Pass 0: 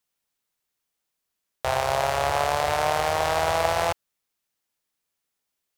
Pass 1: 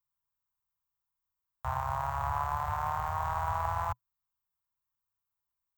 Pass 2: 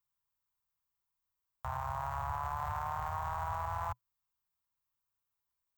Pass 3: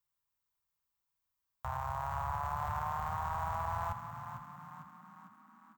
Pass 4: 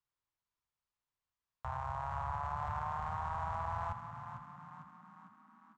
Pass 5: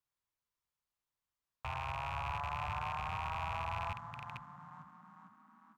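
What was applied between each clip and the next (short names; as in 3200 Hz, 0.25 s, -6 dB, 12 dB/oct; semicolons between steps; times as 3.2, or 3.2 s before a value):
EQ curve 120 Hz 0 dB, 250 Hz -26 dB, 350 Hz -27 dB, 580 Hz -23 dB, 1000 Hz -1 dB, 2300 Hz -21 dB, 4900 Hz -26 dB, 7400 Hz -17 dB, 11000 Hz -27 dB, 16000 Hz -2 dB
limiter -27 dBFS, peak gain reduction 8.5 dB
frequency-shifting echo 0.451 s, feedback 54%, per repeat +31 Hz, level -9 dB
air absorption 92 m; gain -1.5 dB
rattling part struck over -46 dBFS, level -31 dBFS; gain -1 dB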